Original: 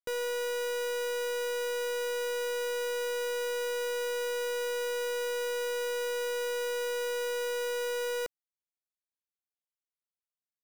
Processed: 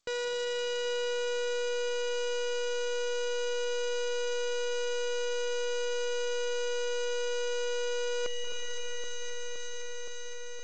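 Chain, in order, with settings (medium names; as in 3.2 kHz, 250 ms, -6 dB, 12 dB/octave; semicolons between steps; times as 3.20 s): treble shelf 3.5 kHz +9.5 dB; echo whose repeats swap between lows and highs 259 ms, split 1.4 kHz, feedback 87%, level -11 dB; reverberation RT60 2.9 s, pre-delay 179 ms, DRR 6.5 dB; reverse; compression 5:1, threshold -38 dBFS, peak gain reduction 11 dB; reverse; trim +8.5 dB; G.722 64 kbps 16 kHz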